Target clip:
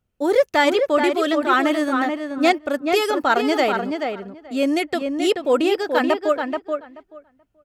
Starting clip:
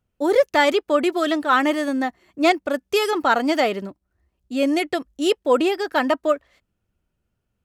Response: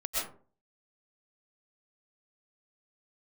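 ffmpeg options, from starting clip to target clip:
-filter_complex "[0:a]bandreject=f=1000:w=24,asplit=2[s0][s1];[s1]adelay=431,lowpass=f=2700:p=1,volume=0.562,asplit=2[s2][s3];[s3]adelay=431,lowpass=f=2700:p=1,volume=0.15,asplit=2[s4][s5];[s5]adelay=431,lowpass=f=2700:p=1,volume=0.15[s6];[s2][s4][s6]amix=inputs=3:normalize=0[s7];[s0][s7]amix=inputs=2:normalize=0"

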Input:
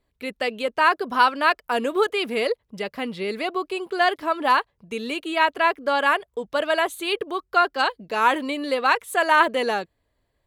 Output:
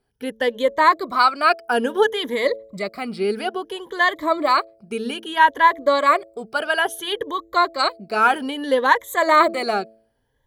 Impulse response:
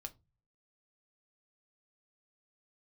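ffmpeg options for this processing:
-af "afftfilt=real='re*pow(10,14/40*sin(2*PI*(1.1*log(max(b,1)*sr/1024/100)/log(2)-(0.6)*(pts-256)/sr)))':imag='im*pow(10,14/40*sin(2*PI*(1.1*log(max(b,1)*sr/1024/100)/log(2)-(0.6)*(pts-256)/sr)))':win_size=1024:overlap=0.75,bandreject=f=2700:w=5.3,bandreject=f=111.1:t=h:w=4,bandreject=f=222.2:t=h:w=4,bandreject=f=333.3:t=h:w=4,bandreject=f=444.4:t=h:w=4,bandreject=f=555.5:t=h:w=4,bandreject=f=666.6:t=h:w=4,volume=1.12"

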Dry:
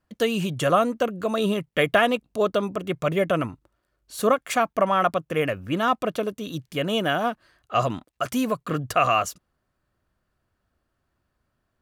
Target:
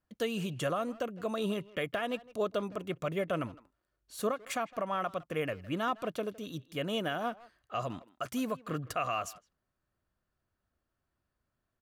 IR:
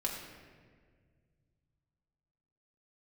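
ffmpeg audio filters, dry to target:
-filter_complex "[0:a]alimiter=limit=0.211:level=0:latency=1:release=215,asplit=2[s0][s1];[s1]adelay=160,highpass=300,lowpass=3400,asoftclip=type=hard:threshold=0.0794,volume=0.126[s2];[s0][s2]amix=inputs=2:normalize=0,volume=0.355"

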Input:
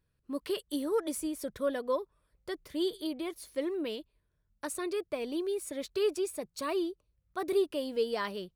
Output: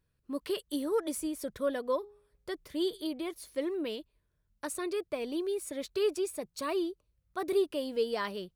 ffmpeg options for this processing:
-filter_complex "[0:a]asettb=1/sr,asplit=3[s0][s1][s2];[s0]atrim=end=1.974[s3];[s1]atrim=start=1.97:end=2.54,asetpts=PTS-STARTPTS,afade=t=in:d=0.004:c=qsin,afade=t=out:st=0.566:d=0.004:c=qsin,bandreject=f=413:t=h:w=4,bandreject=f=826:t=h:w=4,bandreject=f=1239:t=h:w=4,bandreject=f=1652:t=h:w=4,bandreject=f=2065:t=h:w=4,bandreject=f=2478:t=h:w=4,bandreject=f=2891:t=h:w=4,bandreject=f=3304:t=h:w=4,bandreject=f=3717:t=h:w=4,bandreject=f=4130:t=h:w=4,bandreject=f=4543:t=h:w=4,bandreject=f=4956:t=h:w=4,bandreject=f=5369:t=h:w=4,bandreject=f=5782:t=h:w=4,bandreject=f=6195:t=h:w=4,bandreject=f=6608:t=h:w=4,bandreject=f=7021:t=h:w=4,bandreject=f=7434:t=h:w=4,bandreject=f=7847:t=h:w=4,bandreject=f=8260:t=h:w=4,bandreject=f=8673:t=h:w=4,bandreject=f=9086:t=h:w=4,bandreject=f=9499:t=h:w=4,bandreject=f=9912:t=h:w=4,bandreject=f=10325:t=h:w=4,bandreject=f=10738:t=h:w=4,bandreject=f=11151:t=h:w=4[s4];[s2]atrim=start=2.536[s5];[s3][s4]acrossfade=d=0.004:c1=hsin:c2=qsin[s6];[s6][s5]acrossfade=d=0.004:c1=qsin:c2=hsin"

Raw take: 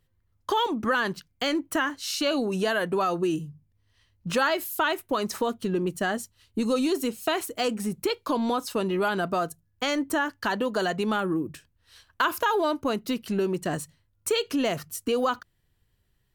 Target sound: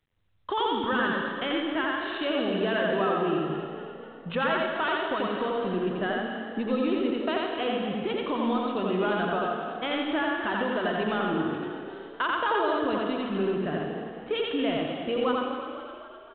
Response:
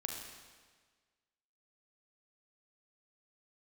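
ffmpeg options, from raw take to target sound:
-filter_complex "[0:a]asplit=8[s0][s1][s2][s3][s4][s5][s6][s7];[s1]adelay=255,afreqshift=37,volume=0.299[s8];[s2]adelay=510,afreqshift=74,volume=0.17[s9];[s3]adelay=765,afreqshift=111,volume=0.0966[s10];[s4]adelay=1020,afreqshift=148,volume=0.0556[s11];[s5]adelay=1275,afreqshift=185,volume=0.0316[s12];[s6]adelay=1530,afreqshift=222,volume=0.018[s13];[s7]adelay=1785,afreqshift=259,volume=0.0102[s14];[s0][s8][s9][s10][s11][s12][s13][s14]amix=inputs=8:normalize=0,asplit=2[s15][s16];[1:a]atrim=start_sample=2205,adelay=87[s17];[s16][s17]afir=irnorm=-1:irlink=0,volume=1.06[s18];[s15][s18]amix=inputs=2:normalize=0,volume=0.596" -ar 8000 -c:a adpcm_g726 -b:a 40k

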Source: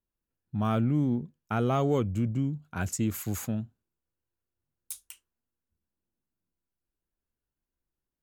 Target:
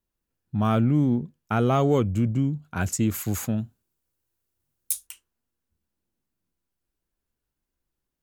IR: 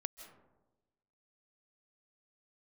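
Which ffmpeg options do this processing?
-filter_complex "[0:a]asettb=1/sr,asplit=3[s0][s1][s2];[s0]atrim=end=3.584[s3];[s1]atrim=start=3.58:end=5.07,asetpts=PTS-STARTPTS,afade=t=in:d=0.004:c=qsin,afade=t=out:st=1.486:d=0.004:c=qsin,highshelf=f=5400:g=9[s4];[s2]atrim=start=5.066[s5];[s3][s4]acrossfade=d=0.004:c1=hsin:c2=qsin[s6];[s6][s5]acrossfade=d=0.004:c1=qsin:c2=hsin,volume=1.78"

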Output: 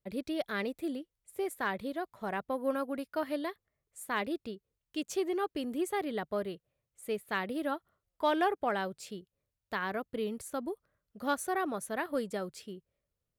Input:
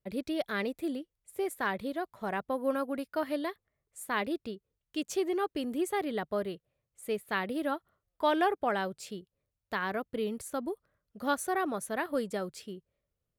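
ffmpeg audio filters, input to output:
-filter_complex "[0:a]aeval=exprs='0.178*(cos(1*acos(clip(val(0)/0.178,-1,1)))-cos(1*PI/2))+0.00447*(cos(7*acos(clip(val(0)/0.178,-1,1)))-cos(7*PI/2))':c=same,asplit=2[s0][s1];[s1]asoftclip=type=tanh:threshold=0.0335,volume=0.316[s2];[s0][s2]amix=inputs=2:normalize=0,volume=0.75"

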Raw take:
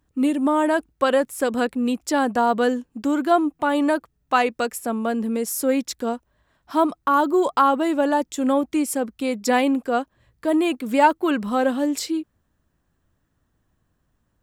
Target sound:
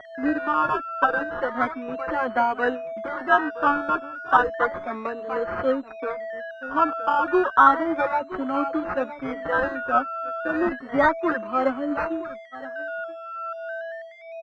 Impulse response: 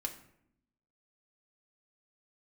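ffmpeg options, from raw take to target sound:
-filter_complex "[0:a]highpass=f=270:w=0.5412,highpass=f=270:w=1.3066,asplit=2[s0][s1];[s1]aecho=0:1:967:0.2[s2];[s0][s2]amix=inputs=2:normalize=0,acrusher=bits=5:mode=log:mix=0:aa=0.000001,asettb=1/sr,asplit=3[s3][s4][s5];[s3]atrim=end=5.694[s6];[s4]atrim=start=5.69:end=6.14,asetpts=PTS-STARTPTS,afade=t=in:d=0.004:c=qsin,afade=t=out:st=0.446:d=0.004:c=qsin,adynamicsmooth=sensitivity=3:basefreq=500[s7];[s5]atrim=start=6.136[s8];[s6][s7]acrossfade=d=0.004:c1=hsin:c2=qsin[s9];[s9][s8]acrossfade=d=0.004:c1=qsin:c2=hsin,tremolo=f=3:d=0.45,agate=range=0.02:threshold=0.0112:ratio=16:detection=peak,aeval=exprs='val(0)+0.0282*sin(2*PI*660*n/s)':c=same,acrusher=samples=17:mix=1:aa=0.000001:lfo=1:lforange=10.2:lforate=0.32,lowpass=f=1400:t=q:w=3.3,asplit=2[s10][s11];[s11]adelay=4.9,afreqshift=1.2[s12];[s10][s12]amix=inputs=2:normalize=1"

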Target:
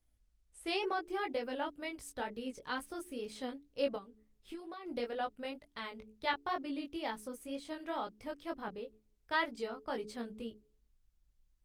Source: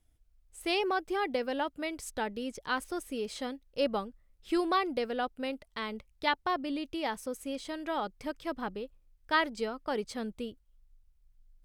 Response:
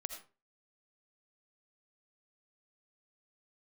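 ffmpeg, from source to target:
-filter_complex "[0:a]bandreject=f=71.44:t=h:w=4,bandreject=f=142.88:t=h:w=4,bandreject=f=214.32:t=h:w=4,bandreject=f=285.76:t=h:w=4,bandreject=f=357.2:t=h:w=4,bandreject=f=428.64:t=h:w=4,asplit=3[s0][s1][s2];[s0]afade=t=out:st=3.95:d=0.02[s3];[s1]acompressor=threshold=0.0112:ratio=16,afade=t=in:st=3.95:d=0.02,afade=t=out:st=4.85:d=0.02[s4];[s2]afade=t=in:st=4.85:d=0.02[s5];[s3][s4][s5]amix=inputs=3:normalize=0,flanger=delay=17.5:depth=4:speed=2.1,volume=0.794" -ar 48000 -c:a libopus -b:a 32k

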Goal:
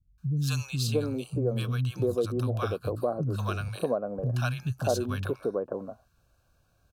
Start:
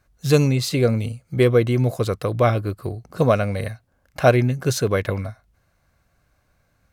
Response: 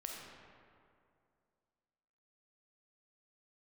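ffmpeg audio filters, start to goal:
-filter_complex "[0:a]asuperstop=centerf=2000:order=4:qfactor=2.5,acrossover=split=200|1000[s0][s1][s2];[s2]adelay=180[s3];[s1]adelay=630[s4];[s0][s4][s3]amix=inputs=3:normalize=0,acompressor=threshold=0.0447:ratio=2,volume=0.794"

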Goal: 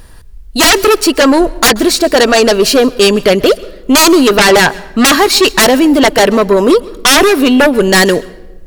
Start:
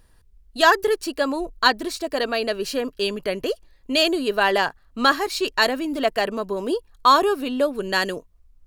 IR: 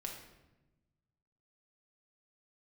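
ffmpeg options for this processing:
-filter_complex "[0:a]aeval=exprs='0.708*sin(PI/2*6.31*val(0)/0.708)':c=same,asplit=2[s0][s1];[1:a]atrim=start_sample=2205,adelay=132[s2];[s1][s2]afir=irnorm=-1:irlink=0,volume=0.119[s3];[s0][s3]amix=inputs=2:normalize=0"

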